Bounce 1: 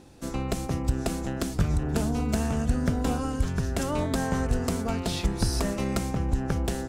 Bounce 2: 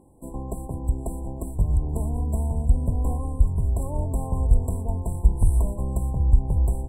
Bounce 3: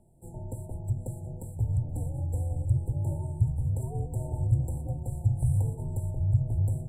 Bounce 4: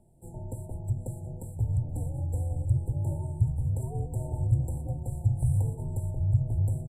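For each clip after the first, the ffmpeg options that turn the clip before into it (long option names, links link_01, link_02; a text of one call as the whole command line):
ffmpeg -i in.wav -af "afftfilt=real='re*(1-between(b*sr/4096,1100,7500))':imag='im*(1-between(b*sr/4096,1100,7500))':win_size=4096:overlap=0.75,asubboost=boost=7:cutoff=90,volume=-3.5dB" out.wav
ffmpeg -i in.wav -af "flanger=delay=5.1:depth=9.8:regen=-69:speed=1:shape=sinusoidal,acontrast=67,afreqshift=-160,volume=-8.5dB" out.wav
ffmpeg -i in.wav -af "aresample=32000,aresample=44100" out.wav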